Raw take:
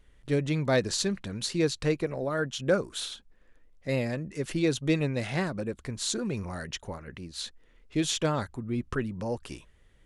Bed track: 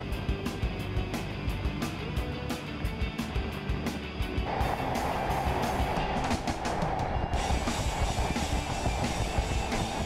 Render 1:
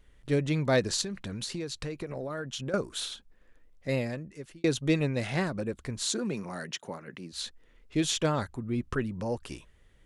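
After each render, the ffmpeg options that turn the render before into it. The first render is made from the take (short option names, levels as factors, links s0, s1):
-filter_complex "[0:a]asettb=1/sr,asplit=3[s0][s1][s2];[s0]atrim=end=1.014[s3];[s1]atrim=start=1.01:end=2.74,asetpts=PTS-STARTPTS,afade=t=in:d=0.004:c=qsin,afade=t=out:st=1.726:d=0.004:c=qsin,acompressor=threshold=0.0282:ratio=12:attack=3.2:release=140:knee=1:detection=peak[s4];[s2]atrim=start=2.736[s5];[s3][s4]acrossfade=d=0.004:c1=hsin:c2=qsin[s6];[s6][s5]acrossfade=d=0.004:c1=qsin:c2=hsin,asettb=1/sr,asplit=3[s7][s8][s9];[s7]atrim=end=6.064[s10];[s8]atrim=start=6.06:end=7.33,asetpts=PTS-STARTPTS,afade=t=in:d=0.004:c=qsin,afade=t=out:st=1.266:d=0.004:c=qsin,highpass=f=150:w=0.5412,highpass=f=150:w=1.3066[s11];[s9]atrim=start=7.326[s12];[s10][s11]acrossfade=d=0.004:c1=hsin:c2=qsin[s13];[s13][s12]acrossfade=d=0.004:c1=qsin:c2=hsin,asplit=2[s14][s15];[s14]atrim=end=4.64,asetpts=PTS-STARTPTS,afade=t=out:st=3.88:d=0.76[s16];[s15]atrim=start=4.64,asetpts=PTS-STARTPTS,afade=t=in:d=0.004:c=hsin[s17];[s16][s17]concat=n=2:v=0:a=1"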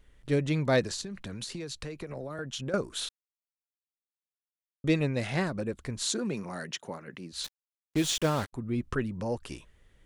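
-filter_complex "[0:a]asettb=1/sr,asplit=3[s0][s1][s2];[s0]atrim=end=0.824[s3];[s1]atrim=start=0.82:end=2.39,asetpts=PTS-STARTPTS,afade=t=in:d=0.004:c=qsin,afade=t=out:st=1.566:d=0.004:c=qsin,acrossover=split=190|440|5900[s4][s5][s6][s7];[s4]acompressor=threshold=0.00891:ratio=3[s8];[s5]acompressor=threshold=0.00631:ratio=3[s9];[s6]acompressor=threshold=0.01:ratio=3[s10];[s7]acompressor=threshold=0.00794:ratio=3[s11];[s8][s9][s10][s11]amix=inputs=4:normalize=0[s12];[s2]atrim=start=2.386[s13];[s3][s12]acrossfade=d=0.004:c1=hsin:c2=qsin[s14];[s14][s13]acrossfade=d=0.004:c1=qsin:c2=hsin,asettb=1/sr,asplit=3[s15][s16][s17];[s15]atrim=end=7.444[s18];[s16]atrim=start=7.44:end=8.53,asetpts=PTS-STARTPTS,afade=t=in:d=0.004:c=qsin,afade=t=out:st=1.086:d=0.004:c=qsin,acrusher=bits=5:mix=0:aa=0.5[s19];[s17]atrim=start=8.526[s20];[s18][s19]acrossfade=d=0.004:c1=hsin:c2=qsin[s21];[s21][s20]acrossfade=d=0.004:c1=qsin:c2=hsin,asplit=3[s22][s23][s24];[s22]atrim=end=3.09,asetpts=PTS-STARTPTS,afade=t=out:st=3.086:d=0.004:c=hsin[s25];[s23]atrim=start=3.09:end=4.84,asetpts=PTS-STARTPTS,volume=0[s26];[s24]atrim=start=4.84,asetpts=PTS-STARTPTS,afade=t=in:d=0.004:c=hsin[s27];[s25][s26][s27]concat=n=3:v=0:a=1"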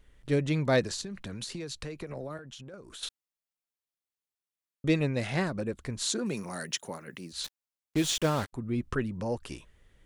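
-filter_complex "[0:a]asettb=1/sr,asplit=3[s0][s1][s2];[s0]atrim=end=2.374[s3];[s1]atrim=start=2.37:end=3.03,asetpts=PTS-STARTPTS,afade=t=in:d=0.004:c=qsin,afade=t=out:st=0.656:d=0.004:c=qsin,acompressor=threshold=0.00794:ratio=12:attack=3.2:release=140:knee=1:detection=peak[s4];[s2]atrim=start=3.026[s5];[s3][s4]acrossfade=d=0.004:c1=hsin:c2=qsin[s6];[s6][s5]acrossfade=d=0.004:c1=qsin:c2=hsin,asettb=1/sr,asplit=3[s7][s8][s9];[s7]atrim=end=6.264[s10];[s8]atrim=start=6.26:end=7.33,asetpts=PTS-STARTPTS,afade=t=in:d=0.004:c=qsin,afade=t=out:st=1.066:d=0.004:c=qsin,aemphasis=mode=production:type=50fm[s11];[s9]atrim=start=7.326[s12];[s10][s11]acrossfade=d=0.004:c1=hsin:c2=qsin[s13];[s13][s12]acrossfade=d=0.004:c1=qsin:c2=hsin"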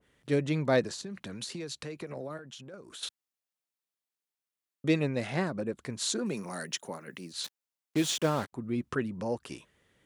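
-af "highpass=140,adynamicequalizer=threshold=0.00631:dfrequency=1700:dqfactor=0.7:tfrequency=1700:tqfactor=0.7:attack=5:release=100:ratio=0.375:range=3:mode=cutabove:tftype=highshelf"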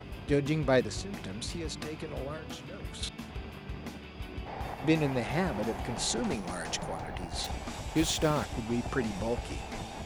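-filter_complex "[1:a]volume=0.355[s0];[0:a][s0]amix=inputs=2:normalize=0"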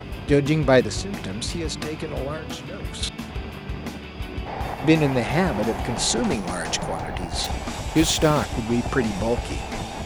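-af "volume=2.82"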